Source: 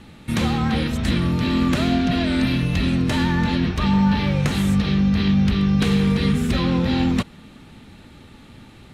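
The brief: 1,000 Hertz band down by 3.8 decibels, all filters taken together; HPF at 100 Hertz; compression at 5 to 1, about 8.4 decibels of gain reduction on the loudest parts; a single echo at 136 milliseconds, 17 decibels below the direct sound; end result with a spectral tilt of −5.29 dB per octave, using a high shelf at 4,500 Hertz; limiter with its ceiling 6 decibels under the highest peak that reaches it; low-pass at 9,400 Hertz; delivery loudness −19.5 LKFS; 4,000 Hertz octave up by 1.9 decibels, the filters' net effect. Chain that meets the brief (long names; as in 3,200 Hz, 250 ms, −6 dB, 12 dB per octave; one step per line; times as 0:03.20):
high-pass filter 100 Hz
low-pass filter 9,400 Hz
parametric band 1,000 Hz −5 dB
parametric band 4,000 Hz +4 dB
high-shelf EQ 4,500 Hz −3 dB
downward compressor 5 to 1, threshold −25 dBFS
brickwall limiter −21 dBFS
single-tap delay 136 ms −17 dB
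level +10 dB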